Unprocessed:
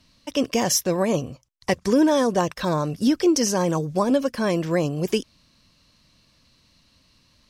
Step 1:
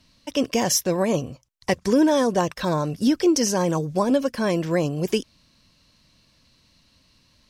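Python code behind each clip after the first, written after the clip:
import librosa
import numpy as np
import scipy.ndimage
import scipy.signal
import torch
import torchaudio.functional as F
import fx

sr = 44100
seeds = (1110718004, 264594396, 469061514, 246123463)

y = fx.notch(x, sr, hz=1200.0, q=20.0)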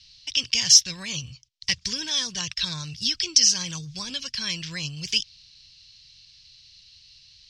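y = fx.curve_eq(x, sr, hz=(120.0, 280.0, 630.0, 3100.0, 5200.0, 13000.0), db=(0, -22, -26, 11, 14, -17))
y = F.gain(torch.from_numpy(y), -1.5).numpy()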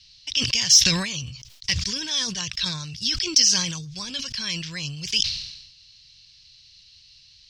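y = 10.0 ** (-2.0 / 20.0) * np.tanh(x / 10.0 ** (-2.0 / 20.0))
y = fx.sustainer(y, sr, db_per_s=58.0)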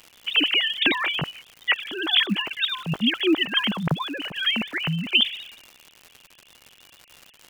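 y = fx.sine_speech(x, sr)
y = fx.dmg_crackle(y, sr, seeds[0], per_s=180.0, level_db=-33.0)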